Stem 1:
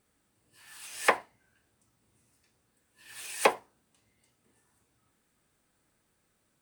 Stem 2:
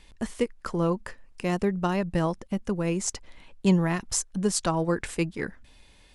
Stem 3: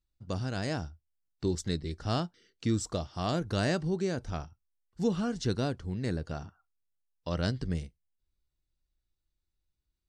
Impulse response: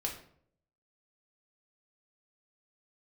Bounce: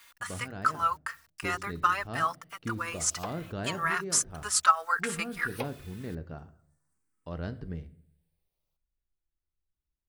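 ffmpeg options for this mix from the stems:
-filter_complex "[0:a]asplit=2[link_01][link_02];[link_02]afreqshift=0.35[link_03];[link_01][link_03]amix=inputs=2:normalize=1,adelay=2150,volume=-12.5dB[link_04];[1:a]highpass=frequency=1300:width_type=q:width=5.1,acrusher=bits=9:mix=0:aa=0.000001,asplit=2[link_05][link_06];[link_06]adelay=3.8,afreqshift=0.76[link_07];[link_05][link_07]amix=inputs=2:normalize=1,volume=1.5dB,asplit=2[link_08][link_09];[2:a]lowpass=2100,volume=-8dB,asplit=2[link_10][link_11];[link_11]volume=-8.5dB[link_12];[link_09]apad=whole_len=444692[link_13];[link_10][link_13]sidechaincompress=threshold=-36dB:ratio=8:attack=45:release=261[link_14];[3:a]atrim=start_sample=2205[link_15];[link_12][link_15]afir=irnorm=-1:irlink=0[link_16];[link_04][link_08][link_14][link_16]amix=inputs=4:normalize=0,highshelf=frequency=8600:gain=8"

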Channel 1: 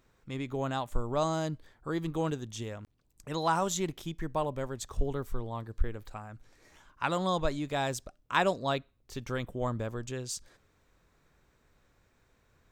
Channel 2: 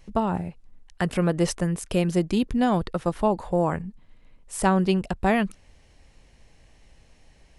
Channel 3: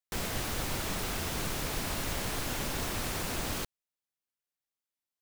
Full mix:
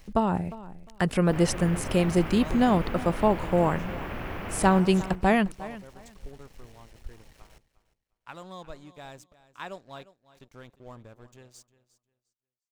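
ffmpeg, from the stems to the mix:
ffmpeg -i stem1.wav -i stem2.wav -i stem3.wav -filter_complex "[0:a]aeval=exprs='sgn(val(0))*max(abs(val(0))-0.00562,0)':channel_layout=same,adelay=1250,volume=-12dB,asplit=2[link_01][link_02];[link_02]volume=-17dB[link_03];[1:a]aeval=exprs='val(0)*gte(abs(val(0)),0.00188)':channel_layout=same,volume=0dB,asplit=2[link_04][link_05];[link_05]volume=-18dB[link_06];[2:a]equalizer=frequency=8100:width_type=o:width=0.81:gain=-15,afwtdn=0.00794,adelay=1150,volume=-0.5dB,asplit=2[link_07][link_08];[link_08]volume=-4dB[link_09];[link_03][link_06][link_09]amix=inputs=3:normalize=0,aecho=0:1:354|708|1062:1|0.21|0.0441[link_10];[link_01][link_04][link_07][link_10]amix=inputs=4:normalize=0" out.wav

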